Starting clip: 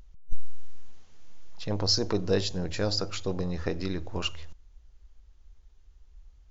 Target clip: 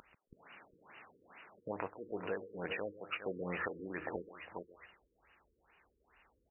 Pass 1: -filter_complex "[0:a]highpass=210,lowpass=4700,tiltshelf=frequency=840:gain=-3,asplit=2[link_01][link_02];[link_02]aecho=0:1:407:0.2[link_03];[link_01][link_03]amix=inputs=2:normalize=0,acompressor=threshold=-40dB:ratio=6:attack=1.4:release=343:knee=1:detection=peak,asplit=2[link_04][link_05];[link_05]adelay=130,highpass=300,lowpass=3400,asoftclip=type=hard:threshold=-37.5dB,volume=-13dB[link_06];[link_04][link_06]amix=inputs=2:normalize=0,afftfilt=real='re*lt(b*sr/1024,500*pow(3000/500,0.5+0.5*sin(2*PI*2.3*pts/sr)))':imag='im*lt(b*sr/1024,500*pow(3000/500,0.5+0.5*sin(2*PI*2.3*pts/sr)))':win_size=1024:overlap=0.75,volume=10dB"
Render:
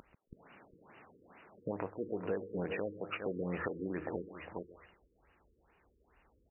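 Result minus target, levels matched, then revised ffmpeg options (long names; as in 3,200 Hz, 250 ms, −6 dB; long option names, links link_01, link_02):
1,000 Hz band −3.0 dB
-filter_complex "[0:a]highpass=210,lowpass=4700,tiltshelf=frequency=840:gain=-10.5,asplit=2[link_01][link_02];[link_02]aecho=0:1:407:0.2[link_03];[link_01][link_03]amix=inputs=2:normalize=0,acompressor=threshold=-40dB:ratio=6:attack=1.4:release=343:knee=1:detection=peak,asplit=2[link_04][link_05];[link_05]adelay=130,highpass=300,lowpass=3400,asoftclip=type=hard:threshold=-37.5dB,volume=-13dB[link_06];[link_04][link_06]amix=inputs=2:normalize=0,afftfilt=real='re*lt(b*sr/1024,500*pow(3000/500,0.5+0.5*sin(2*PI*2.3*pts/sr)))':imag='im*lt(b*sr/1024,500*pow(3000/500,0.5+0.5*sin(2*PI*2.3*pts/sr)))':win_size=1024:overlap=0.75,volume=10dB"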